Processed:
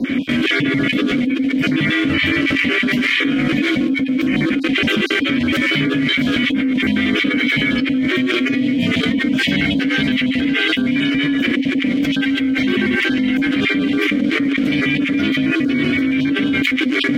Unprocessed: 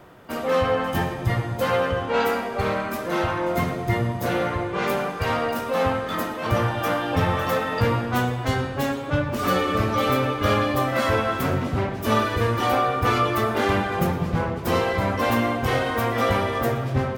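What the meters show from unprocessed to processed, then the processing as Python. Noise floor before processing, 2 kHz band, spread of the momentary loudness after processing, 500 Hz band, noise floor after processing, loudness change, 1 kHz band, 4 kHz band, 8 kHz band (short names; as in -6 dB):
-30 dBFS, +10.5 dB, 2 LU, -2.5 dB, -20 dBFS, +7.0 dB, -9.0 dB, +12.0 dB, n/a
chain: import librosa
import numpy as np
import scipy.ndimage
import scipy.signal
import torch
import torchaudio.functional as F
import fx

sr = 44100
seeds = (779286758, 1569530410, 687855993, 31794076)

p1 = fx.spec_dropout(x, sr, seeds[0], share_pct=37)
p2 = p1 * np.sin(2.0 * np.pi * 380.0 * np.arange(len(p1)) / sr)
p3 = fx.quant_dither(p2, sr, seeds[1], bits=6, dither='none')
p4 = p2 + (p3 * 10.0 ** (-6.0 / 20.0))
p5 = fx.vowel_filter(p4, sr, vowel='i')
p6 = fx.env_flatten(p5, sr, amount_pct=100)
y = p6 * 10.0 ** (5.5 / 20.0)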